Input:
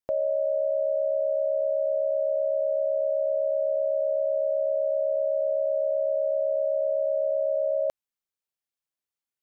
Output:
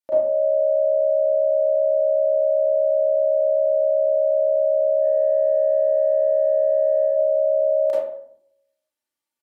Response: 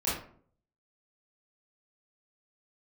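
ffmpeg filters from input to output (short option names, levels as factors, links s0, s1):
-filter_complex "[0:a]highpass=f=220:p=1,aecho=1:1:3.4:0.54,asplit=3[s0][s1][s2];[s0]afade=t=out:st=5:d=0.02[s3];[s1]acontrast=44,afade=t=in:st=5:d=0.02,afade=t=out:st=7.06:d=0.02[s4];[s2]afade=t=in:st=7.06:d=0.02[s5];[s3][s4][s5]amix=inputs=3:normalize=0,alimiter=limit=0.141:level=0:latency=1:release=85[s6];[1:a]atrim=start_sample=2205,asetrate=31752,aresample=44100[s7];[s6][s7]afir=irnorm=-1:irlink=0,volume=0.668"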